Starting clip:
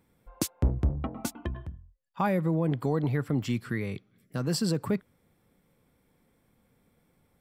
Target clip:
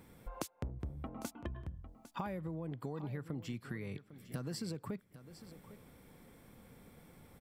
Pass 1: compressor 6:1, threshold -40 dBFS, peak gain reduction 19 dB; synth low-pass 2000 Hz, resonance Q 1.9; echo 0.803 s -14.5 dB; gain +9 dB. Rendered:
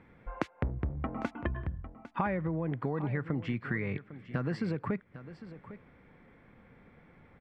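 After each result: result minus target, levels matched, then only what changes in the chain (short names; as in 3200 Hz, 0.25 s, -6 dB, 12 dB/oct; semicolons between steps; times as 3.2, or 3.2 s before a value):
compressor: peak gain reduction -8.5 dB; 2000 Hz band +4.0 dB
change: compressor 6:1, threshold -50 dBFS, peak gain reduction 27.5 dB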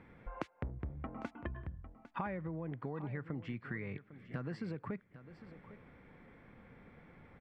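2000 Hz band +4.5 dB
remove: synth low-pass 2000 Hz, resonance Q 1.9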